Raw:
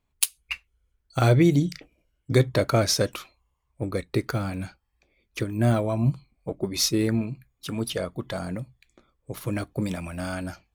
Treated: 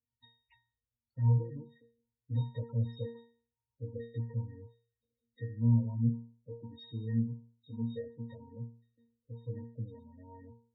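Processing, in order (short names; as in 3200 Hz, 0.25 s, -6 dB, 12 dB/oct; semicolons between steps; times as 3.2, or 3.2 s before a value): hard clip -19 dBFS, distortion -10 dB; octave resonator A#, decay 0.43 s; loudest bins only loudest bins 16; gain +2 dB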